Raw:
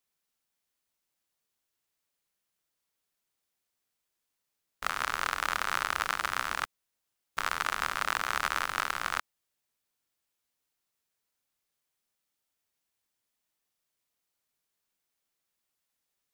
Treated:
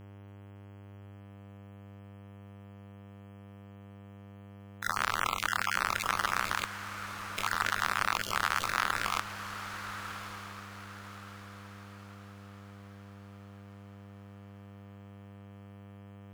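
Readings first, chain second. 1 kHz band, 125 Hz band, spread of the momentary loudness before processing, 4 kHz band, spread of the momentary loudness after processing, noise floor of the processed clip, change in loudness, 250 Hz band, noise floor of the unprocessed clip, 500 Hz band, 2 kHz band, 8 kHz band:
+0.5 dB, +12.0 dB, 6 LU, +1.0 dB, 21 LU, -50 dBFS, -1.0 dB, +8.5 dB, -84 dBFS, +1.5 dB, +0.5 dB, +1.0 dB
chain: random spectral dropouts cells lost 25%; in parallel at +2 dB: limiter -18.5 dBFS, peak gain reduction 7.5 dB; on the sum: buzz 100 Hz, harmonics 33, -46 dBFS -7 dB/oct; diffused feedback echo 1.154 s, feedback 41%, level -10 dB; gain -3.5 dB

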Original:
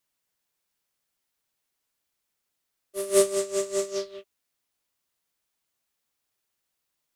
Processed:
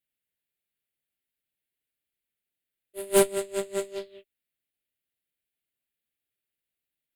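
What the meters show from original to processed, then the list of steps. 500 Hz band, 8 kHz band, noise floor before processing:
-1.5 dB, -2.5 dB, -81 dBFS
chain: fixed phaser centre 2500 Hz, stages 4; added harmonics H 2 -6 dB, 5 -9 dB, 7 -10 dB, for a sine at -10.5 dBFS

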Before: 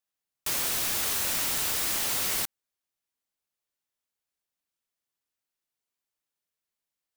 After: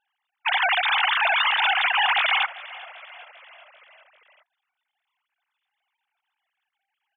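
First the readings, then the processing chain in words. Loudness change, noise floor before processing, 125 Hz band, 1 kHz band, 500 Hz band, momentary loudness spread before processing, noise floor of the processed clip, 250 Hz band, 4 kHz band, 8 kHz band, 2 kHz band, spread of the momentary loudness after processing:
+6.0 dB, under -85 dBFS, under -30 dB, +17.0 dB, +6.5 dB, 4 LU, -83 dBFS, under -25 dB, +9.0 dB, under -40 dB, +16.5 dB, 14 LU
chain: sine-wave speech; frequency-shifting echo 0.394 s, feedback 60%, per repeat -37 Hz, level -19.5 dB; gain +7 dB

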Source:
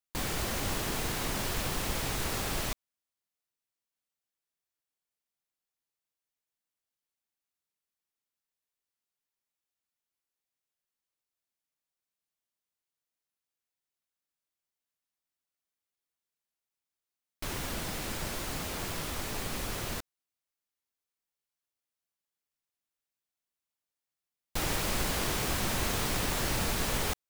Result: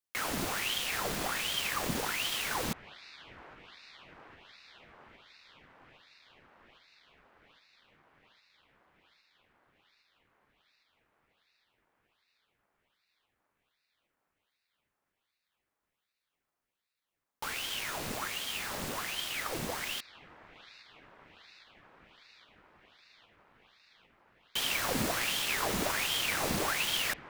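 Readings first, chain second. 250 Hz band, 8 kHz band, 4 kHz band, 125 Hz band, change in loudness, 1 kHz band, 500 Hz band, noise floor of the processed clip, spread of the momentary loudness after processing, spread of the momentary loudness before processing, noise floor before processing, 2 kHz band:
-2.5 dB, -1.0 dB, +3.5 dB, -7.5 dB, +0.5 dB, +0.5 dB, -1.0 dB, under -85 dBFS, 20 LU, 6 LU, under -85 dBFS, +3.0 dB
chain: band-limited delay 0.81 s, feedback 77%, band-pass 920 Hz, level -13.5 dB; ring modulator with a swept carrier 1700 Hz, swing 90%, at 1.3 Hz; gain +1.5 dB

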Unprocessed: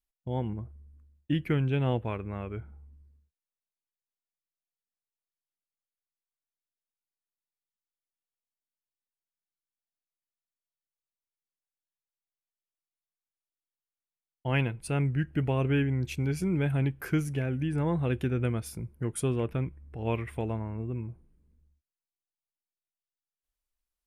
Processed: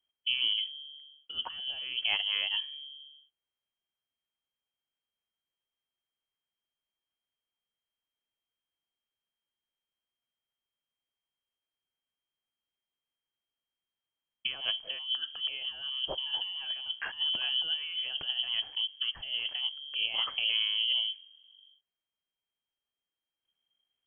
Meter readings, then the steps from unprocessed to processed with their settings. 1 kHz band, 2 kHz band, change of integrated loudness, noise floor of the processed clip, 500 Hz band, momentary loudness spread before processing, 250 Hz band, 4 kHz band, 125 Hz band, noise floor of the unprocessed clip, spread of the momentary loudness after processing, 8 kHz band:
-8.5 dB, +2.0 dB, 0.0 dB, under -85 dBFS, -18.5 dB, 10 LU, under -30 dB, +22.0 dB, under -35 dB, under -85 dBFS, 10 LU, under -30 dB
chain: negative-ratio compressor -32 dBFS, ratio -0.5; inverted band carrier 3200 Hz

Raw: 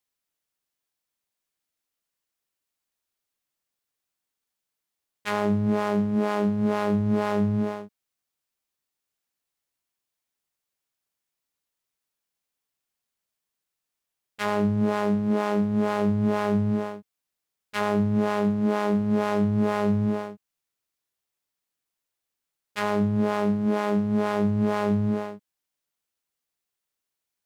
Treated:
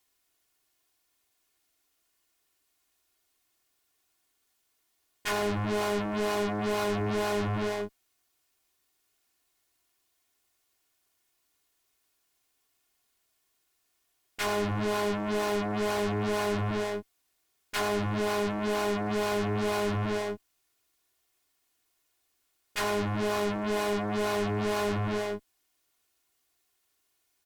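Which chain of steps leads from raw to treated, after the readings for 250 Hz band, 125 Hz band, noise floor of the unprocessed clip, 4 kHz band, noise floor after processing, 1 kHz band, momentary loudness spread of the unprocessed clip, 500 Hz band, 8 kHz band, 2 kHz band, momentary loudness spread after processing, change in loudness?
-9.5 dB, -6.5 dB, -85 dBFS, +5.0 dB, -75 dBFS, -2.5 dB, 7 LU, -2.5 dB, n/a, +0.5 dB, 5 LU, -5.0 dB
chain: soft clip -24 dBFS, distortion -10 dB; added harmonics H 5 -9 dB, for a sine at -24 dBFS; comb 2.8 ms, depth 55%

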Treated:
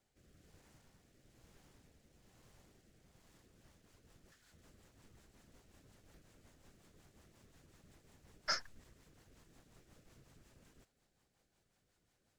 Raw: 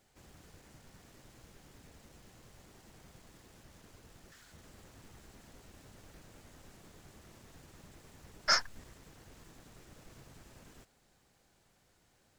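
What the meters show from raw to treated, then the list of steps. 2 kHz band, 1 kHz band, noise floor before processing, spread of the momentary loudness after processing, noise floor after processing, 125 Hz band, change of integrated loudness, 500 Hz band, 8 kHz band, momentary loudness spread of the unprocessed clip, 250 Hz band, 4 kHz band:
-9.5 dB, -10.0 dB, -71 dBFS, 5 LU, -80 dBFS, -8.5 dB, -8.5 dB, -8.5 dB, -10.0 dB, 6 LU, -8.5 dB, -9.0 dB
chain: rotary speaker horn 1.1 Hz, later 5.5 Hz, at 3.12; gain -7 dB

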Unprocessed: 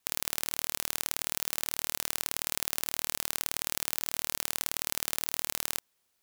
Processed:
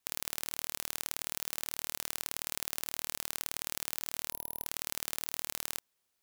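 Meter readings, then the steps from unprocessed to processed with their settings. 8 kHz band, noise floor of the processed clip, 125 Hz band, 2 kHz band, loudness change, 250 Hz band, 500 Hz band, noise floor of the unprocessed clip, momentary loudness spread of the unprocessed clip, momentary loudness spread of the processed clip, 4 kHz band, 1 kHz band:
-5.0 dB, -80 dBFS, -4.5 dB, -5.0 dB, -5.0 dB, -4.5 dB, -4.5 dB, -76 dBFS, 0 LU, 1 LU, -5.0 dB, -5.0 dB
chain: spectral gain 4.31–4.66, 960–11000 Hz -14 dB; short-mantissa float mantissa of 4-bit; gain -4.5 dB

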